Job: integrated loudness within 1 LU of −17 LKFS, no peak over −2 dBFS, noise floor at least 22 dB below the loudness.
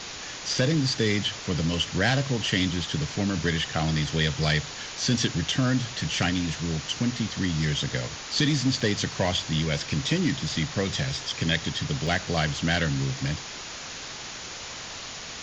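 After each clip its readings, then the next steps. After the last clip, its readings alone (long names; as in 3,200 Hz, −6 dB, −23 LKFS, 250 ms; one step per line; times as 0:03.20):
number of dropouts 2; longest dropout 2.9 ms; background noise floor −38 dBFS; target noise floor −49 dBFS; integrated loudness −26.5 LKFS; sample peak −8.5 dBFS; target loudness −17.0 LKFS
→ repair the gap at 0:08.80/0:12.07, 2.9 ms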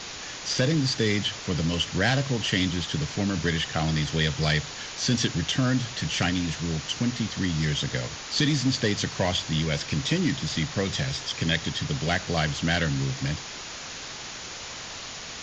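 number of dropouts 0; background noise floor −38 dBFS; target noise floor −49 dBFS
→ broadband denoise 11 dB, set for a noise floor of −38 dBFS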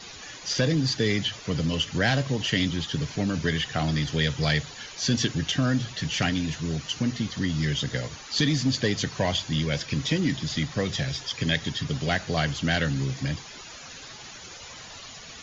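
background noise floor −43 dBFS; target noise floor −49 dBFS
→ broadband denoise 6 dB, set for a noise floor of −43 dBFS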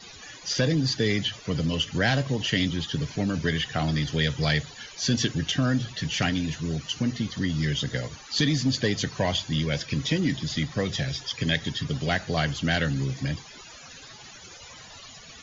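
background noise floor −46 dBFS; target noise floor −49 dBFS
→ broadband denoise 6 dB, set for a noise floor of −46 dBFS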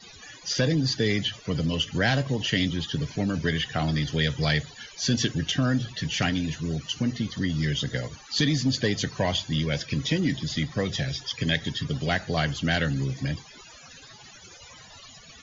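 background noise floor −49 dBFS; integrated loudness −26.5 LKFS; sample peak −9.0 dBFS; target loudness −17.0 LKFS
→ level +9.5 dB
brickwall limiter −2 dBFS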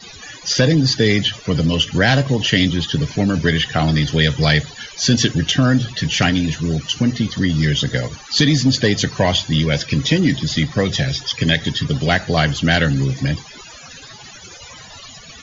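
integrated loudness −17.0 LKFS; sample peak −2.0 dBFS; background noise floor −39 dBFS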